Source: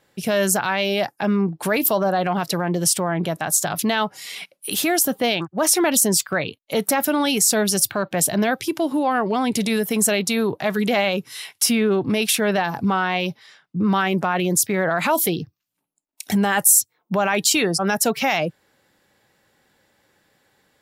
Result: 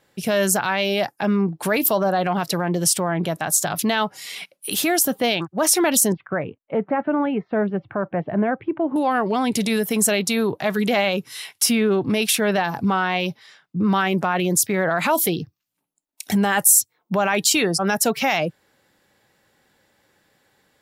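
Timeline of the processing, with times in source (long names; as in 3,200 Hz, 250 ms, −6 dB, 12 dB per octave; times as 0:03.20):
0:06.12–0:08.96: Bessel low-pass filter 1,300 Hz, order 8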